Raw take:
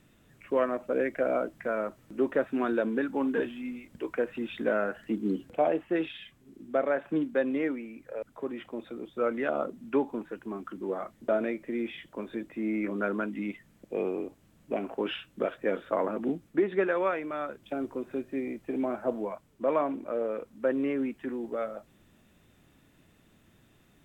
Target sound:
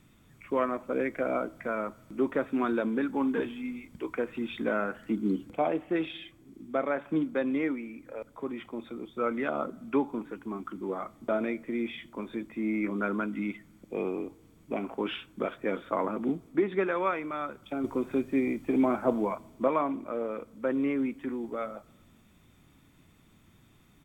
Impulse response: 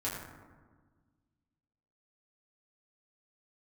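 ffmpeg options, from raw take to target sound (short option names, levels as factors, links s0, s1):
-filter_complex "[0:a]aecho=1:1:0.9:0.36,asplit=2[s0][s1];[1:a]atrim=start_sample=2205[s2];[s1][s2]afir=irnorm=-1:irlink=0,volume=0.0473[s3];[s0][s3]amix=inputs=2:normalize=0,asettb=1/sr,asplit=3[s4][s5][s6];[s4]atrim=end=17.844[s7];[s5]atrim=start=17.84:end=19.68,asetpts=PTS-STARTPTS,afade=t=in:d=0.004:c=qsin,afade=t=out:st=1.836:d=0.004:c=qsin,acontrast=34[s8];[s6]atrim=start=19.676[s9];[s7][s8]acrossfade=d=0.004:c1=hsin:c2=qsin[s10];[s10][s9]acrossfade=d=0.004:c1=qsin:c2=hsin"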